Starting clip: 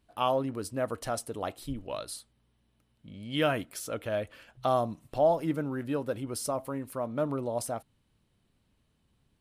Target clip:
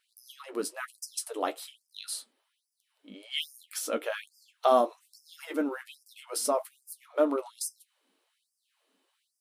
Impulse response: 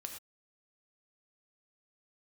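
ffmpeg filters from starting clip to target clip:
-af "flanger=delay=9.7:depth=3.8:regen=-38:speed=0.35:shape=triangular,afftfilt=real='re*gte(b*sr/1024,210*pow(4800/210,0.5+0.5*sin(2*PI*1.2*pts/sr)))':imag='im*gte(b*sr/1024,210*pow(4800/210,0.5+0.5*sin(2*PI*1.2*pts/sr)))':win_size=1024:overlap=0.75,volume=8.5dB"

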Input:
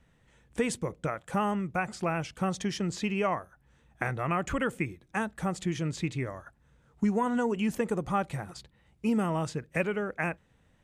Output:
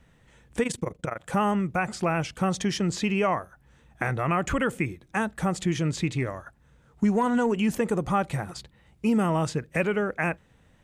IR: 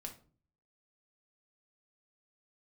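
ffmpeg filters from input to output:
-filter_complex "[0:a]asplit=2[a][b];[b]alimiter=limit=-23.5dB:level=0:latency=1:release=29,volume=-0.5dB[c];[a][c]amix=inputs=2:normalize=0,asplit=3[d][e][f];[d]afade=t=out:st=0.62:d=0.02[g];[e]tremolo=f=24:d=0.857,afade=t=in:st=0.62:d=0.02,afade=t=out:st=1.2:d=0.02[h];[f]afade=t=in:st=1.2:d=0.02[i];[g][h][i]amix=inputs=3:normalize=0,asettb=1/sr,asplit=3[j][k][l];[j]atrim=end=6.164[m];[k]atrim=start=6.16:end=7.58,asetpts=PTS-STARTPTS,afade=t=in:d=0.004:c=qsin,afade=t=out:st=1.416:d=0.004:c=qsin,aeval=exprs='0.211*(cos(1*acos(clip(val(0)/0.211,-1,1)))-cos(1*PI/2))+0.00376*(cos(7*acos(clip(val(0)/0.211,-1,1)))-cos(7*PI/2))':c=same[n];[l]atrim=start=7.576[o];[m][n]acrossfade=d=0.004:c1=hsin:c2=qsin[p];[p][o]acrossfade=d=0.004:c1=qsin:c2=hsin"

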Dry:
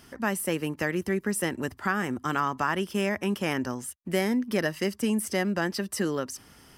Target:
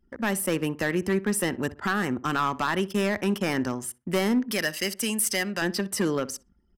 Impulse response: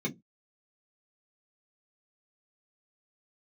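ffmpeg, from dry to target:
-filter_complex "[0:a]asettb=1/sr,asplit=3[a][b][c];[a]atrim=end=4.514[d];[b]atrim=start=4.51:end=5.62,asetpts=PTS-STARTPTS,afade=t=in:d=0.004:c=qsin,afade=t=out:st=1.106:d=0.004:c=qsin,tiltshelf=f=1.5k:g=-7.5[e];[c]atrim=start=5.616[f];[d][e]acrossfade=d=0.004:c1=hsin:c2=qsin[g];[g][f]acrossfade=d=0.004:c1=qsin:c2=hsin,asoftclip=type=hard:threshold=-21dB,anlmdn=0.1,asplit=2[h][i];[i]adelay=62,lowpass=f=1.5k:p=1,volume=-17dB,asplit=2[j][k];[k]adelay=62,lowpass=f=1.5k:p=1,volume=0.33,asplit=2[l][m];[m]adelay=62,lowpass=f=1.5k:p=1,volume=0.33[n];[h][j][l][n]amix=inputs=4:normalize=0,volume=3dB"

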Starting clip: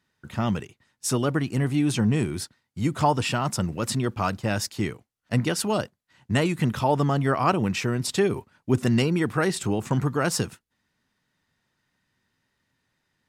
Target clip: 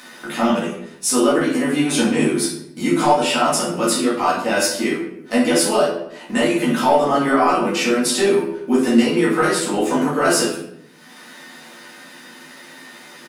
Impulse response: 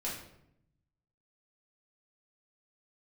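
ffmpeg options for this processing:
-filter_complex "[0:a]highpass=f=250:w=0.5412,highpass=f=250:w=1.3066,equalizer=f=10k:t=o:w=0.2:g=8.5,acontrast=69,alimiter=limit=-9dB:level=0:latency=1:release=375,acompressor=mode=upward:threshold=-24dB:ratio=2.5,asplit=2[a][b];[b]adelay=12,volume=-3.5dB[c];[a][c]amix=inputs=2:normalize=0[d];[1:a]atrim=start_sample=2205[e];[d][e]afir=irnorm=-1:irlink=0"

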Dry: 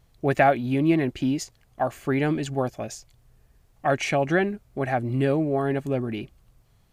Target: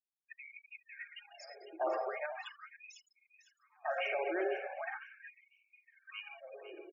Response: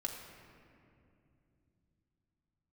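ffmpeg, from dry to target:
-filter_complex "[0:a]areverse,acompressor=threshold=-35dB:ratio=8,areverse[a];[1:a]atrim=start_sample=2205,afade=t=out:st=0.44:d=0.01,atrim=end_sample=19845[b];[a][b]afir=irnorm=-1:irlink=0,alimiter=level_in=11dB:limit=-24dB:level=0:latency=1:release=45,volume=-11dB,acrossover=split=3600[c][d];[d]acompressor=threshold=-59dB:ratio=4:attack=1:release=60[e];[c][e]amix=inputs=2:normalize=0,afftfilt=real='re*gte(hypot(re,im),0.00501)':imag='im*gte(hypot(re,im),0.00501)':win_size=1024:overlap=0.75,asplit=2[f][g];[g]aecho=0:1:502|1004|1506:0.251|0.0804|0.0257[h];[f][h]amix=inputs=2:normalize=0,afftfilt=real='re*gte(b*sr/1024,330*pow(2200/330,0.5+0.5*sin(2*PI*0.4*pts/sr)))':imag='im*gte(b*sr/1024,330*pow(2200/330,0.5+0.5*sin(2*PI*0.4*pts/sr)))':win_size=1024:overlap=0.75,volume=10dB"

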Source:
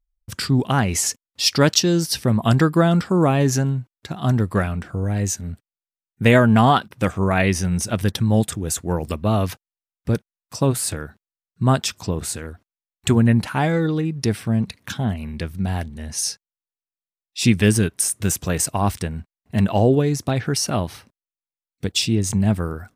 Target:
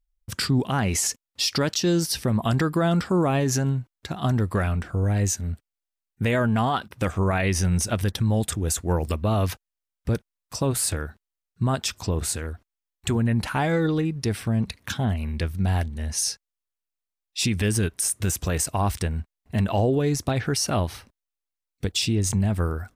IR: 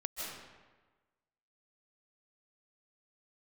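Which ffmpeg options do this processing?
-af "asubboost=boost=4:cutoff=66,alimiter=limit=-14dB:level=0:latency=1:release=75"

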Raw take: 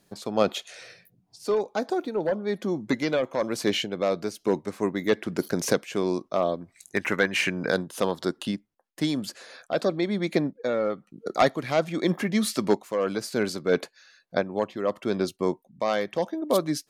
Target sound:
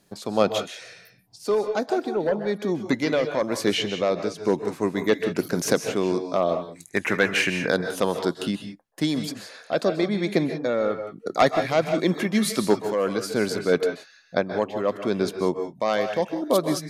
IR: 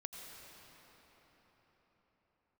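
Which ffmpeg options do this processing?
-filter_complex "[0:a]asettb=1/sr,asplit=3[a][b][c];[a]atrim=end=3.734[d];[b]atrim=start=3.73:end=4.45,asetpts=PTS-STARTPTS,afade=t=in:d=0.004:c=qsin,afade=t=out:st=0.716:d=0.004:c=qsin,lowpass=7.6k[e];[c]atrim=start=4.446[f];[d][e]acrossfade=d=0.004:c1=hsin:c2=qsin[g];[g][f]acrossfade=d=0.004:c1=qsin:c2=hsin[h];[1:a]atrim=start_sample=2205,afade=t=out:st=0.17:d=0.01,atrim=end_sample=7938,asetrate=27783,aresample=44100[i];[h][i]afir=irnorm=-1:irlink=0,volume=5dB"

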